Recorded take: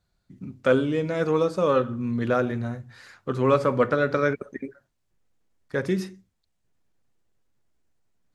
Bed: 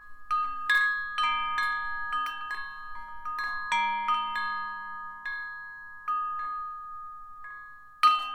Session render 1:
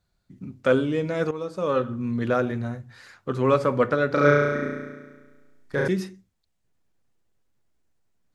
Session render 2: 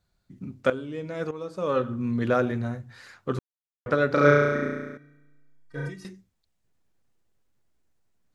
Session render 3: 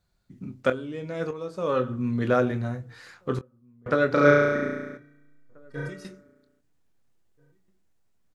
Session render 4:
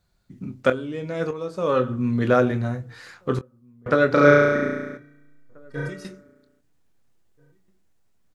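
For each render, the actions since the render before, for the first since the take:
1.31–1.91 fade in, from -14 dB; 4.1–5.88 flutter echo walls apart 5.9 m, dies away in 1.4 s
0.7–2.01 fade in, from -14.5 dB; 3.39–3.86 mute; 4.97–6.05 metallic resonator 140 Hz, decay 0.24 s, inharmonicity 0.03
doubler 24 ms -11 dB; outdoor echo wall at 280 m, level -29 dB
gain +4 dB; limiter -3 dBFS, peak gain reduction 1 dB

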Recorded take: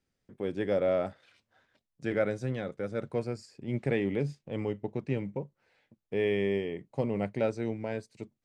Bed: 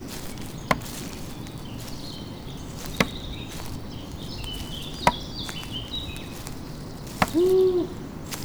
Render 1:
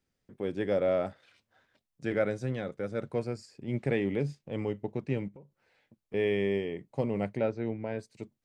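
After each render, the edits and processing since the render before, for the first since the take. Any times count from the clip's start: 5.28–6.14 compressor 4:1, threshold -50 dBFS; 7.37–7.99 air absorption 210 m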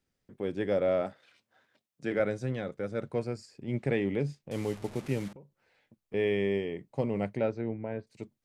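1.01–2.2 HPF 140 Hz; 4.51–5.33 delta modulation 64 kbps, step -40.5 dBFS; 7.61–8.07 air absorption 380 m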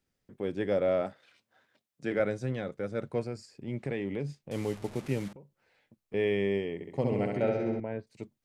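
3.24–4.4 compressor 2:1, threshold -32 dBFS; 6.74–7.8 flutter echo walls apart 11.3 m, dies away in 1.1 s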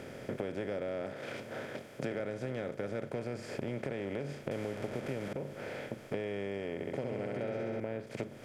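per-bin compression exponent 0.4; compressor 12:1, threshold -33 dBFS, peak gain reduction 14.5 dB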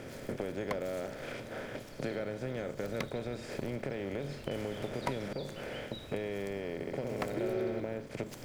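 add bed -17 dB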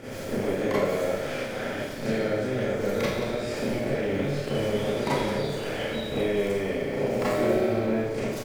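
echo 0.178 s -10.5 dB; Schroeder reverb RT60 0.82 s, combs from 28 ms, DRR -10 dB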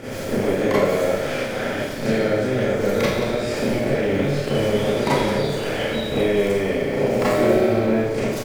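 gain +6.5 dB

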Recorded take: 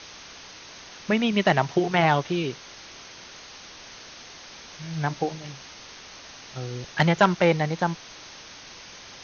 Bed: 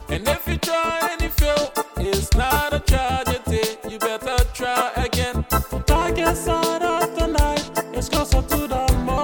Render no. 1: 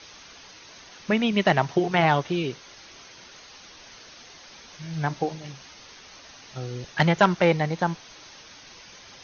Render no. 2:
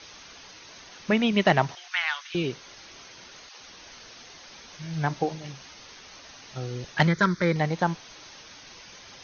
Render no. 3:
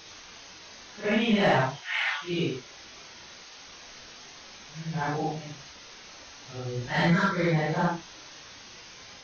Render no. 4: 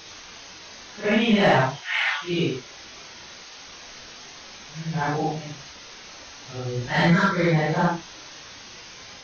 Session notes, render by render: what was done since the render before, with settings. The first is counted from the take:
denoiser 6 dB, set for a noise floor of -45 dBFS
1.75–2.35 HPF 1400 Hz 24 dB/oct; 3.49–4.17 dispersion lows, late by 0.124 s, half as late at 310 Hz; 7.07–7.56 fixed phaser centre 2800 Hz, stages 6
phase scrambler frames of 0.2 s; soft clip -13.5 dBFS, distortion -20 dB
gain +4.5 dB

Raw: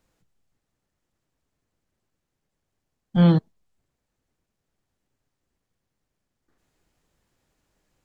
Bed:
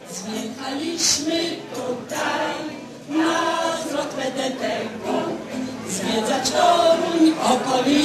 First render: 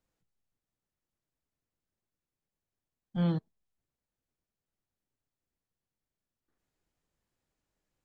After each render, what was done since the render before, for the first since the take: gain -12.5 dB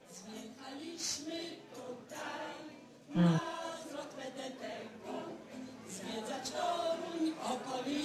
add bed -19.5 dB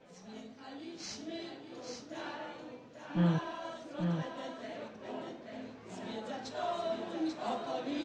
air absorption 130 m; echo 0.839 s -5 dB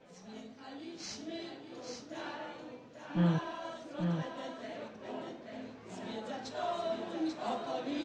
nothing audible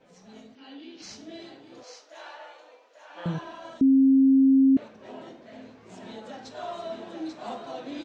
0.55–1.02 speaker cabinet 270–5400 Hz, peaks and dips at 270 Hz +8 dB, 690 Hz -5 dB, 1200 Hz -4 dB, 2900 Hz +9 dB; 1.83–3.26 HPF 510 Hz 24 dB/oct; 3.81–4.77 bleep 268 Hz -14.5 dBFS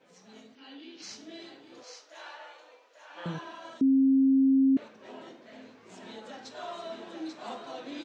HPF 320 Hz 6 dB/oct; bell 680 Hz -4 dB 0.75 oct

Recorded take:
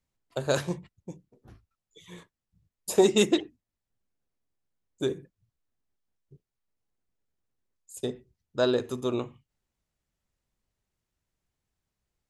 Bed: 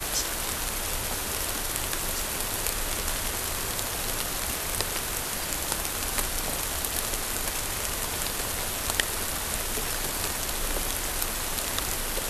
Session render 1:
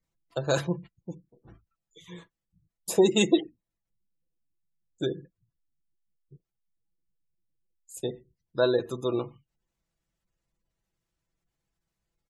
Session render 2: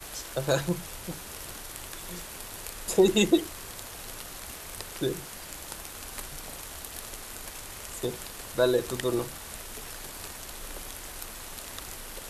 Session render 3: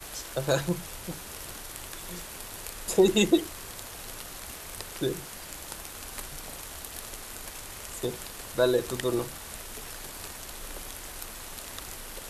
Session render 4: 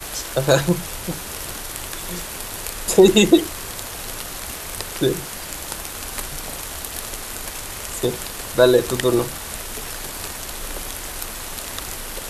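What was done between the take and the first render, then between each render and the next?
comb 6 ms, depth 43%; spectral gate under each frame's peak -30 dB strong
add bed -11 dB
nothing audible
gain +10 dB; limiter -1 dBFS, peak gain reduction 3 dB

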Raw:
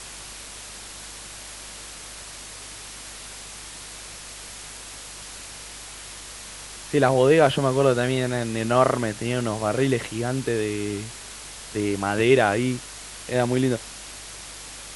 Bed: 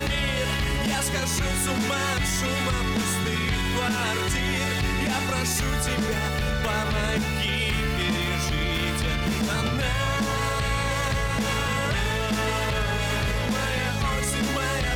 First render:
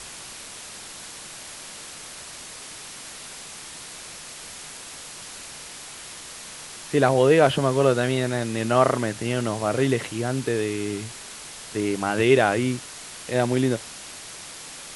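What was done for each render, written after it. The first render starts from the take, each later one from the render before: de-hum 50 Hz, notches 2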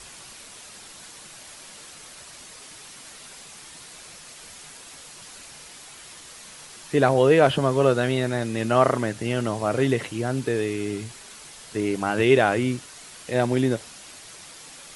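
denoiser 6 dB, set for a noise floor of -40 dBFS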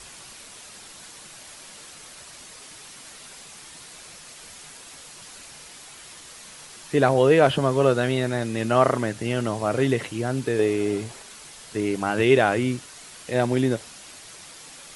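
10.59–11.22 bell 590 Hz +8.5 dB 1.6 oct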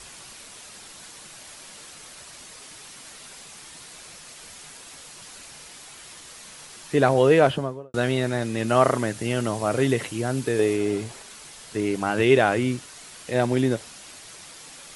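7.36–7.94 studio fade out; 8.68–10.77 high shelf 7900 Hz +7 dB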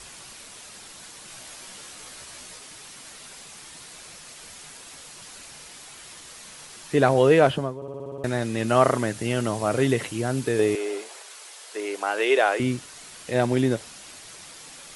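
1.26–2.58 doubler 16 ms -3.5 dB; 7.76 stutter in place 0.06 s, 8 plays; 10.75–12.6 HPF 410 Hz 24 dB/oct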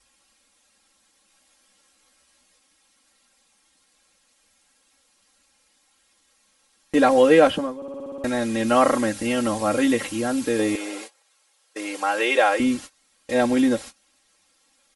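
gate -37 dBFS, range -23 dB; comb 3.7 ms, depth 96%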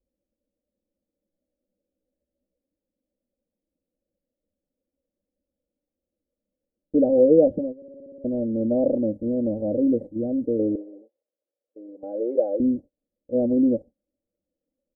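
gate -28 dBFS, range -9 dB; elliptic low-pass 580 Hz, stop band 50 dB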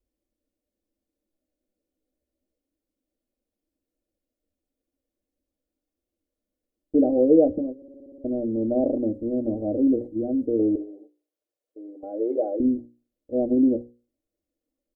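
notches 60/120/180/240/300/360/420/480/540 Hz; comb 2.8 ms, depth 53%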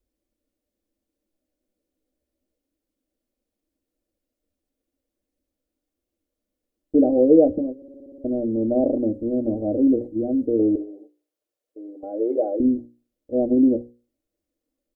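gain +2.5 dB

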